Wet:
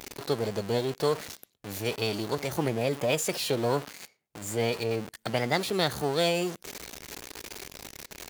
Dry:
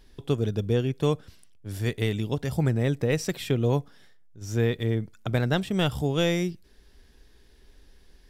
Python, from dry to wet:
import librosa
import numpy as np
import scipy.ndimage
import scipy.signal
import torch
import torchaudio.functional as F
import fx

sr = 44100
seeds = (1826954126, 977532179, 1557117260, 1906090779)

y = x + 0.5 * 10.0 ** (-31.0 / 20.0) * np.sign(x)
y = fx.formant_shift(y, sr, semitones=4)
y = fx.highpass(y, sr, hz=410.0, slope=6)